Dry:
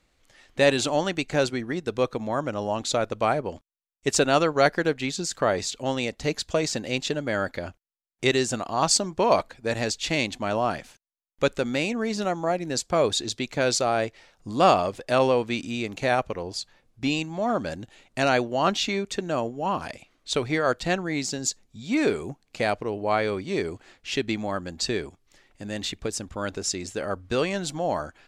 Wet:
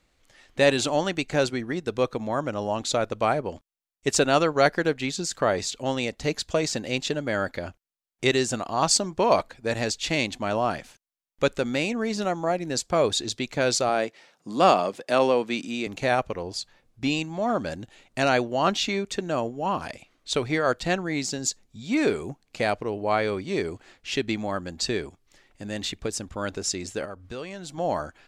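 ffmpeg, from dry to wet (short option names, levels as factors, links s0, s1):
-filter_complex "[0:a]asettb=1/sr,asplit=3[s0][s1][s2];[s0]atrim=end=13.894[s3];[s1]atrim=start=13.89:end=15.87,asetpts=PTS-STARTPTS,afade=t=in:d=0.004:c=qsin,afade=t=out:st=1.976:d=0.004:c=qsin,highpass=f=160:w=0.5412,highpass=f=160:w=1.3066[s4];[s2]atrim=start=15.866[s5];[s3][s4]acrossfade=d=0.004:c1=hsin:c2=qsin[s6];[s6][s5]acrossfade=d=0.004:c1=qsin:c2=hsin,asettb=1/sr,asplit=3[s7][s8][s9];[s7]atrim=end=27.054[s10];[s8]atrim=start=27.05:end=27.78,asetpts=PTS-STARTPTS,afade=t=in:d=0.004:c=qsin,afade=t=out:st=0.726:d=0.004:c=qsin,acompressor=threshold=0.00891:ratio=2:attack=3.2:release=140:knee=1:detection=peak[s11];[s9]atrim=start=27.776[s12];[s10][s11]acrossfade=d=0.004:c1=hsin:c2=qsin[s13];[s13][s12]acrossfade=d=0.004:c1=qsin:c2=hsin"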